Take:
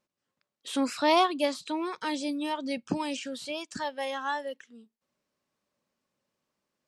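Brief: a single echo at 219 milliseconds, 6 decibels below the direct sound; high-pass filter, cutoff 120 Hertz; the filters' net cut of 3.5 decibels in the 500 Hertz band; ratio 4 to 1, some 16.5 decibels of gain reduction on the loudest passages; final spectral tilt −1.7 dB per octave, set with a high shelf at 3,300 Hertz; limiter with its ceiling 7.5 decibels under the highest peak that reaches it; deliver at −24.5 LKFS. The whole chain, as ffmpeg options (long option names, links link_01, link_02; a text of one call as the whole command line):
ffmpeg -i in.wav -af "highpass=120,equalizer=frequency=500:width_type=o:gain=-5,highshelf=frequency=3300:gain=6.5,acompressor=threshold=-39dB:ratio=4,alimiter=level_in=9dB:limit=-24dB:level=0:latency=1,volume=-9dB,aecho=1:1:219:0.501,volume=17.5dB" out.wav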